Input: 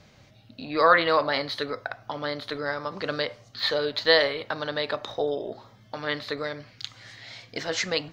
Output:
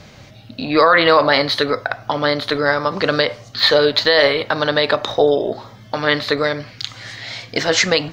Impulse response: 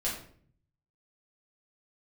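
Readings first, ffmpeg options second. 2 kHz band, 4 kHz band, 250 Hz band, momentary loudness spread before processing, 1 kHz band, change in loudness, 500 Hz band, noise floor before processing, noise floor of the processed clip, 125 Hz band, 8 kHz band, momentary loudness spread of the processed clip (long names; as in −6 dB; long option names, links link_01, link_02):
+9.5 dB, +10.5 dB, +12.0 dB, 19 LU, +8.5 dB, +10.0 dB, +10.5 dB, −56 dBFS, −43 dBFS, +12.5 dB, can't be measured, 16 LU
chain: -af "alimiter=level_in=14.5dB:limit=-1dB:release=50:level=0:latency=1,volume=-1.5dB"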